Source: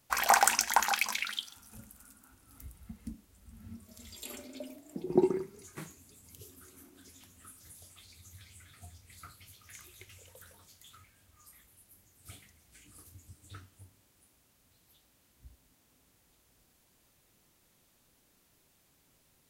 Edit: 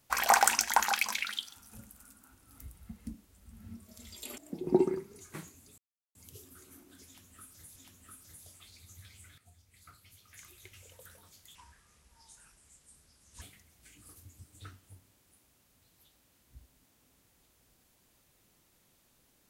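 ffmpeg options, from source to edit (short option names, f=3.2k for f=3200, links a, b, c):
-filter_complex "[0:a]asplit=7[a][b][c][d][e][f][g];[a]atrim=end=4.382[h];[b]atrim=start=4.808:end=6.21,asetpts=PTS-STARTPTS,afade=t=out:st=1.398:d=0.004:c=hsin,apad=pad_dur=0.37[i];[c]atrim=start=6.21:end=7.822,asetpts=PTS-STARTPTS,afade=t=in:d=0.004:c=hsin[j];[d]atrim=start=7.118:end=8.74,asetpts=PTS-STARTPTS,afade=t=out:st=1.618:d=0.004:c=hsin:silence=0.237137[k];[e]atrim=start=8.74:end=10.914,asetpts=PTS-STARTPTS,afade=t=in:d=1.48:silence=0.237137[l];[f]atrim=start=10.91:end=12.31,asetpts=PTS-STARTPTS,asetrate=33075,aresample=44100[m];[g]atrim=start=12.306[n];[i][j]concat=n=2:v=0:a=1[o];[h][o]acrossfade=d=0.004:c1=hsin:c2=hsin[p];[k][l]concat=n=2:v=0:a=1[q];[p][q]acrossfade=d=0.004:c1=hsin:c2=hsin[r];[r][m]acrossfade=d=0.004:c1=hsin:c2=hsin[s];[s][n]acrossfade=d=0.004:c1=hsin:c2=hsin"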